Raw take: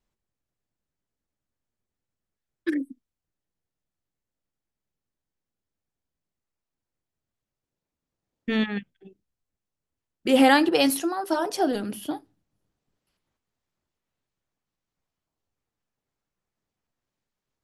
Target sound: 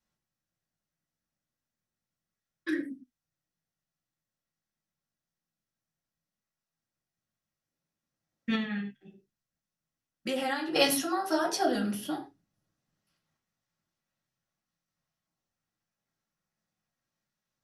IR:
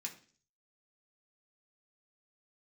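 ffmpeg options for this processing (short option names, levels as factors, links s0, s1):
-filter_complex "[1:a]atrim=start_sample=2205,atrim=end_sample=4410,asetrate=33516,aresample=44100[s0];[0:a][s0]afir=irnorm=-1:irlink=0,asettb=1/sr,asplit=3[s1][s2][s3];[s1]atrim=end=8.554[s4];[s2]atrim=start=8.55:end=10.76,asetpts=PTS-STARTPTS,afade=t=in:d=0.004:c=qsin,afade=t=out:st=2.206:d=0.004:c=qsin,acompressor=threshold=0.0316:ratio=5[s5];[s3]atrim=start=10.756[s6];[s4][s5]acrossfade=d=0.004:c1=hsin:c2=qsin[s7];[s7][s6]acrossfade=d=0.004:c1=qsin:c2=hsin"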